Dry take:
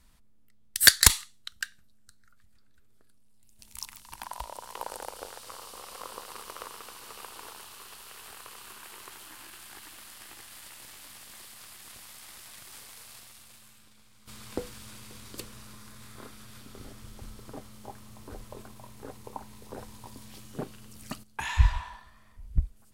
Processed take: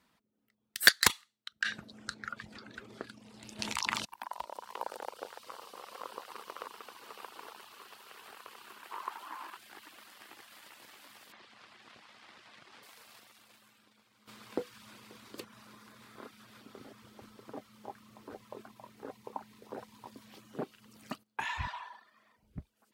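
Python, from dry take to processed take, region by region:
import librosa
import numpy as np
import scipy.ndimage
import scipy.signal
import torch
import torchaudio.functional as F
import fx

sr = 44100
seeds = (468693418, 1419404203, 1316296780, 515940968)

y = fx.chain(x, sr, fx.lowpass(hz=6600.0, slope=12),
    fx.env_flatten(amount_pct=100), at=(1.62, 4.05))
y = fx.chain(y, sr, fx.highpass(hz=160.0, slope=12),
    fx.peak_eq(hz=1000.0, db=15.0, octaves=0.84), at=(8.91, 9.57))
y = fx.chain(y, sr, fx.lowpass(hz=5300.0, slope=12),
    fx.bass_treble(bass_db=3, treble_db=-2), at=(11.32, 12.83))
y = fx.chain(y, sr, fx.highpass(hz=330.0, slope=6),
    fx.peak_eq(hz=4300.0, db=2.5, octaves=1.3), at=(21.67, 22.43))
y = scipy.signal.sosfilt(scipy.signal.butter(2, 220.0, 'highpass', fs=sr, output='sos'), y)
y = fx.dereverb_blind(y, sr, rt60_s=0.53)
y = fx.peak_eq(y, sr, hz=10000.0, db=-12.5, octaves=1.8)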